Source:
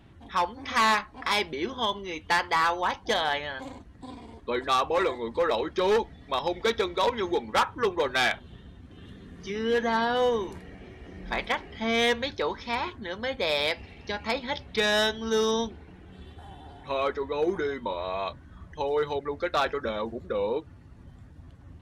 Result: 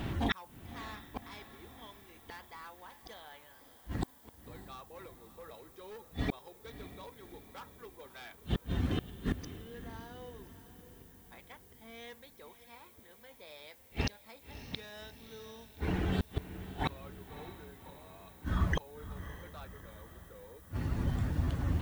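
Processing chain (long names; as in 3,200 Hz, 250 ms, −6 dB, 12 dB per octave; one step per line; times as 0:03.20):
gate with flip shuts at −36 dBFS, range −42 dB
background noise violet −79 dBFS
feedback delay with all-pass diffusion 589 ms, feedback 54%, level −13 dB
level +16.5 dB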